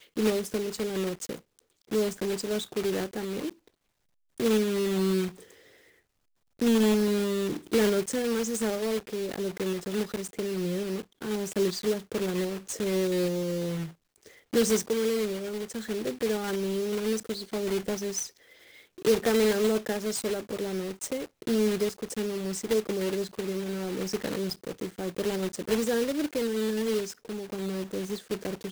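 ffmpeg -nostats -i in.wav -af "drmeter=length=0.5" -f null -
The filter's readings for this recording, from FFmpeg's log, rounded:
Channel 1: DR: 9.6
Overall DR: 9.6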